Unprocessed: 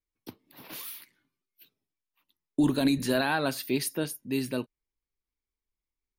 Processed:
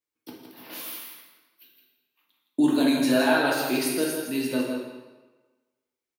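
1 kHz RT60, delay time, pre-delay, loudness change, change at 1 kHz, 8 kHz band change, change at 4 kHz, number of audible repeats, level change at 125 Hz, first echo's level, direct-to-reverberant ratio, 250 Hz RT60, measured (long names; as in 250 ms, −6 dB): 1.3 s, 164 ms, 3 ms, +4.5 dB, +5.0 dB, +4.0 dB, +4.0 dB, 1, −4.5 dB, −6.5 dB, −3.5 dB, 1.2 s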